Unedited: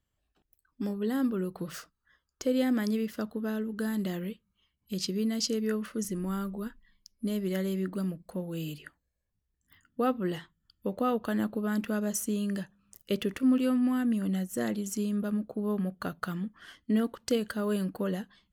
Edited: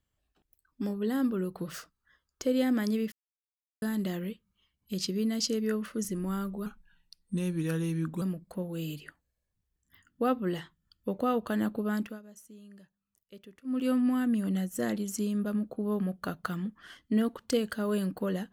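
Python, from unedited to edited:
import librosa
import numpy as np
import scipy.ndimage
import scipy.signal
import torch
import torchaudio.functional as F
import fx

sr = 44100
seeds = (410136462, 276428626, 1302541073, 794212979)

y = fx.edit(x, sr, fx.silence(start_s=3.12, length_s=0.7),
    fx.speed_span(start_s=6.66, length_s=1.34, speed=0.86),
    fx.fade_down_up(start_s=11.72, length_s=1.96, db=-20.5, fade_s=0.26), tone=tone)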